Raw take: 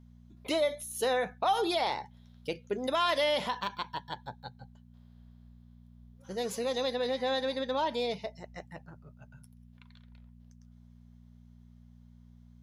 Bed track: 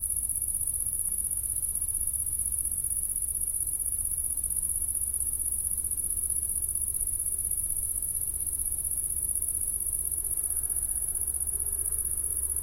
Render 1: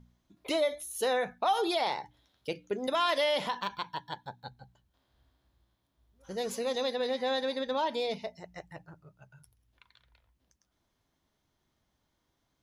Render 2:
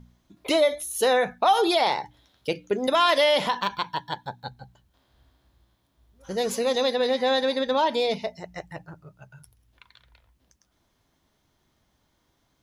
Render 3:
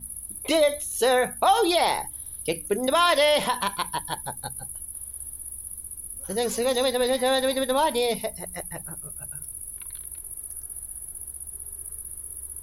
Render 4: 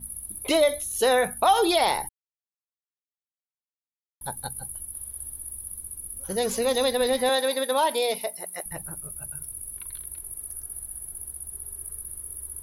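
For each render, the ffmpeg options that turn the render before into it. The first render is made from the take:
-af "bandreject=f=60:t=h:w=4,bandreject=f=120:t=h:w=4,bandreject=f=180:t=h:w=4,bandreject=f=240:t=h:w=4,bandreject=f=300:t=h:w=4"
-af "volume=8dB"
-filter_complex "[1:a]volume=-7.5dB[a];[0:a][a]amix=inputs=2:normalize=0"
-filter_complex "[0:a]asettb=1/sr,asplit=3[a][b][c];[a]atrim=end=7.294[d];[b]atrim=start=7.29:end=8.66,asetpts=PTS-STARTPTS,afade=t=in:d=0.004:c=qsin,afade=t=out:st=1.366:d=0.004:c=qsin,highpass=350[e];[c]atrim=start=8.656[f];[d][e]acrossfade=d=0.004:c1=hsin:c2=qsin[g];[g][f]acrossfade=d=0.004:c1=qsin:c2=hsin,asplit=3[h][i][j];[h]atrim=end=2.09,asetpts=PTS-STARTPTS,afade=t=out:st=2.086:d=0.004:c=hsin[k];[i]atrim=start=2.09:end=4.21,asetpts=PTS-STARTPTS,volume=0[l];[j]atrim=start=4.21,asetpts=PTS-STARTPTS,afade=t=in:d=0.004:c=hsin[m];[k][l][m]concat=n=3:v=0:a=1"

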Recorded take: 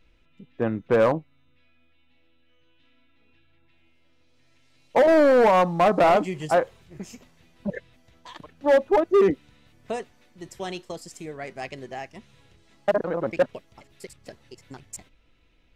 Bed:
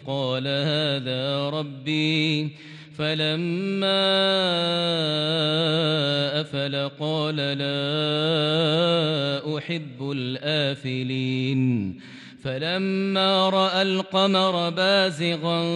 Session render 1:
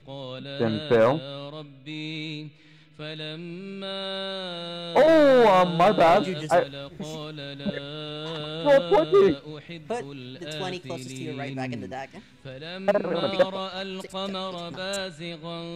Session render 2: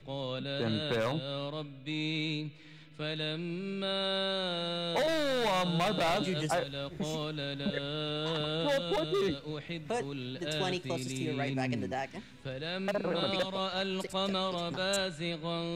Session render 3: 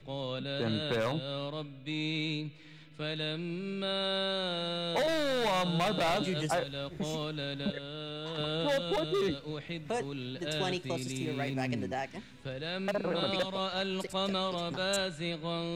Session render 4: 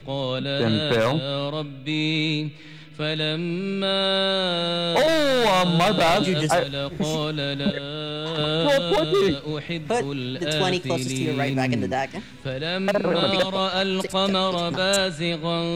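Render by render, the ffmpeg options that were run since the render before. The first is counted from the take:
-filter_complex "[1:a]volume=-11.5dB[a];[0:a][a]amix=inputs=2:normalize=0"
-filter_complex "[0:a]acrossover=split=160|3000[a][b][c];[b]acompressor=threshold=-28dB:ratio=2.5[d];[a][d][c]amix=inputs=3:normalize=0,acrossover=split=1300[e][f];[e]alimiter=limit=-24dB:level=0:latency=1[g];[g][f]amix=inputs=2:normalize=0"
-filter_complex "[0:a]asettb=1/sr,asplit=3[a][b][c];[a]atrim=end=11.214[d];[b]atrim=start=11.21:end=11.72,asetpts=PTS-STARTPTS,afade=t=in:d=0.004:c=qsin,afade=t=out:st=0.506:d=0.004:c=qsin,aeval=exprs='sgn(val(0))*max(abs(val(0))-0.00251,0)':c=same[e];[c]atrim=start=11.716[f];[d][e]acrossfade=d=0.004:c1=hsin:c2=qsin[g];[g][f]acrossfade=d=0.004:c1=qsin:c2=hsin,asplit=3[h][i][j];[h]atrim=end=7.722[k];[i]atrim=start=7.718:end=8.382,asetpts=PTS-STARTPTS,volume=-5.5dB[l];[j]atrim=start=8.378[m];[k][l]acrossfade=d=0.004:c1=hsin:c2=hsin[n];[n][m]acrossfade=d=0.004:c1=hsin:c2=hsin"
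-af "volume=10.5dB"

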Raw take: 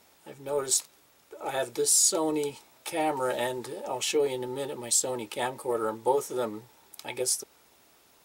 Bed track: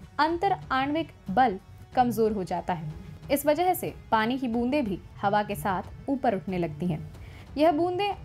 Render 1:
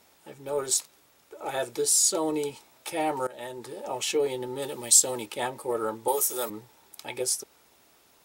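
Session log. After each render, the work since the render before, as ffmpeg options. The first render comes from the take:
-filter_complex "[0:a]asettb=1/sr,asplit=3[a][b][c];[a]atrim=end=4.624[d];[b]atrim=start=4.62:end=5.26,asetpts=PTS-STARTPTS,afade=t=in:d=0.004:c=qsin,afade=t=out:st=0.636:d=0.004:c=qsin,highshelf=f=3.2k:g=8[e];[c]atrim=start=5.256[f];[d][e]acrossfade=d=0.004:c1=hsin:c2=qsin[g];[g][f]acrossfade=d=0.004:c1=qsin:c2=hsin,asettb=1/sr,asplit=3[h][i][j];[h]atrim=end=6.084[k];[i]atrim=start=6.08:end=6.5,asetpts=PTS-STARTPTS,afade=t=in:d=0.004:c=qsin,afade=t=out:st=0.416:d=0.004:c=qsin,aemphasis=mode=production:type=riaa[l];[j]atrim=start=6.496[m];[k][l]acrossfade=d=0.004:c1=hsin:c2=qsin[n];[n][m]acrossfade=d=0.004:c1=qsin:c2=hsin,asplit=2[o][p];[o]atrim=end=3.27,asetpts=PTS-STARTPTS,afade=t=out:st=3.266:d=0.004:c=hsin:silence=0.0944061[q];[p]atrim=start=3.27,asetpts=PTS-STARTPTS,afade=t=in:d=0.56:silence=0.0944061[r];[q][r]concat=n=2:v=0:a=1"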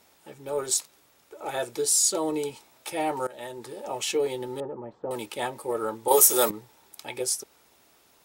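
-filter_complex "[0:a]asettb=1/sr,asplit=3[a][b][c];[a]atrim=end=4.604[d];[b]atrim=start=4.6:end=5.11,asetpts=PTS-STARTPTS,afade=t=in:d=0.004:c=qsin,afade=t=out:st=0.506:d=0.004:c=qsin,lowpass=f=1.2k:w=0.5412,lowpass=f=1.2k:w=1.3066[e];[c]atrim=start=5.106[f];[d][e]acrossfade=d=0.004:c1=hsin:c2=qsin[g];[g][f]acrossfade=d=0.004:c1=qsin:c2=hsin,asplit=3[h][i][j];[h]atrim=end=6.112[k];[i]atrim=start=6.108:end=6.512,asetpts=PTS-STARTPTS,volume=9dB[l];[j]atrim=start=6.508[m];[k][l]acrossfade=d=0.004:c1=hsin:c2=hsin[n];[n][m]acrossfade=d=0.004:c1=hsin:c2=hsin"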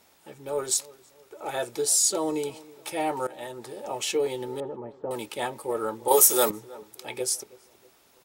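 -filter_complex "[0:a]asplit=2[a][b];[b]adelay=321,lowpass=f=1.3k:p=1,volume=-20dB,asplit=2[c][d];[d]adelay=321,lowpass=f=1.3k:p=1,volume=0.48,asplit=2[e][f];[f]adelay=321,lowpass=f=1.3k:p=1,volume=0.48,asplit=2[g][h];[h]adelay=321,lowpass=f=1.3k:p=1,volume=0.48[i];[a][c][e][g][i]amix=inputs=5:normalize=0"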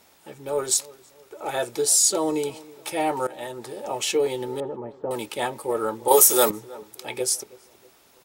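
-af "volume=3.5dB,alimiter=limit=-2dB:level=0:latency=1"

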